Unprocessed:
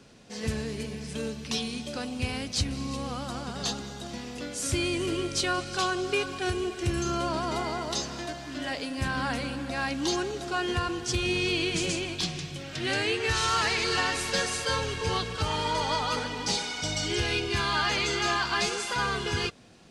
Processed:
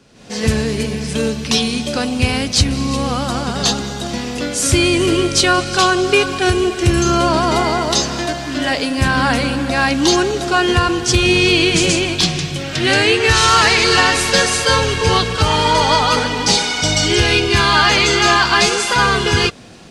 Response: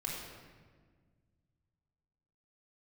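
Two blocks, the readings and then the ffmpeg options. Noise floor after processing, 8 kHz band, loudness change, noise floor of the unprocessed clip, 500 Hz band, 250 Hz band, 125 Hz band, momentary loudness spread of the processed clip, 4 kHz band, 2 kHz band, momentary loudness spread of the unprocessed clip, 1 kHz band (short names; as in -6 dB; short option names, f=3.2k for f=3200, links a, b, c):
-25 dBFS, +14.5 dB, +14.5 dB, -40 dBFS, +14.5 dB, +14.5 dB, +14.5 dB, 9 LU, +14.5 dB, +14.5 dB, 9 LU, +14.5 dB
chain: -af "dynaudnorm=f=130:g=3:m=12.5dB,volume=2.5dB"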